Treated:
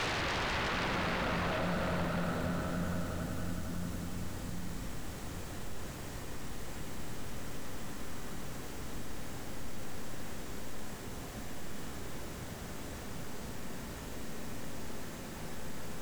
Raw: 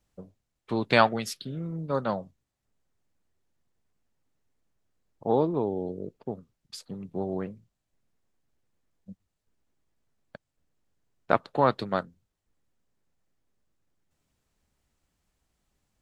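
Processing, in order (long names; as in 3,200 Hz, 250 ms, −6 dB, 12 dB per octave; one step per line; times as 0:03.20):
reversed playback
downward compressor, threshold −35 dBFS, peak gain reduction 20 dB
reversed playback
extreme stretch with random phases 23×, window 1.00 s, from 0:12.33
sine wavefolder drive 18 dB, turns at −44 dBFS
echo that builds up and dies away 91 ms, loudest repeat 5, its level −17 dB
multiband upward and downward compressor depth 40%
level +15 dB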